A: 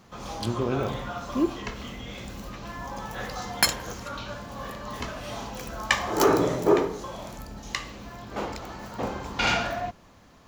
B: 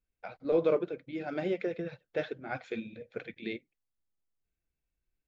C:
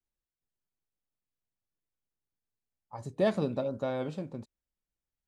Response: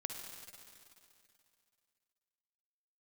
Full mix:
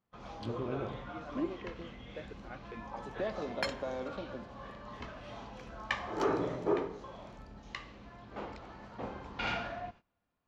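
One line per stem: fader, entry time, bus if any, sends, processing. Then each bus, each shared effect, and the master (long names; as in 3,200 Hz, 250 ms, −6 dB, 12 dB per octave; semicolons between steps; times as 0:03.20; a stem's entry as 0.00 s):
−11.0 dB, 0.00 s, no bus, send −20 dB, no processing
−11.0 dB, 0.00 s, bus A, no send, no processing
−0.5 dB, 0.00 s, bus A, send −11.5 dB, Bessel high-pass filter 320 Hz, order 8
bus A: 0.0 dB, downward compressor, threshold −39 dBFS, peak gain reduction 14.5 dB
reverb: on, RT60 2.6 s, pre-delay 48 ms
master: low-pass filter 3,500 Hz 12 dB per octave; noise gate −53 dBFS, range −20 dB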